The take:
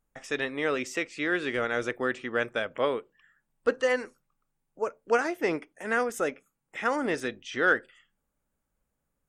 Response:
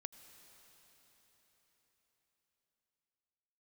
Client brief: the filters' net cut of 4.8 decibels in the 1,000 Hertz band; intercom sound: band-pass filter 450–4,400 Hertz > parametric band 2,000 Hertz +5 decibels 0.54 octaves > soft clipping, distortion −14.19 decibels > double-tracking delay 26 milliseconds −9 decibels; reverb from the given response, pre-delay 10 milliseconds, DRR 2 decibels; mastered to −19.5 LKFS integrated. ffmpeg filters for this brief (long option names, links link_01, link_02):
-filter_complex "[0:a]equalizer=frequency=1000:width_type=o:gain=-8,asplit=2[link_01][link_02];[1:a]atrim=start_sample=2205,adelay=10[link_03];[link_02][link_03]afir=irnorm=-1:irlink=0,volume=2.5dB[link_04];[link_01][link_04]amix=inputs=2:normalize=0,highpass=450,lowpass=4400,equalizer=frequency=2000:width_type=o:width=0.54:gain=5,asoftclip=threshold=-21dB,asplit=2[link_05][link_06];[link_06]adelay=26,volume=-9dB[link_07];[link_05][link_07]amix=inputs=2:normalize=0,volume=11.5dB"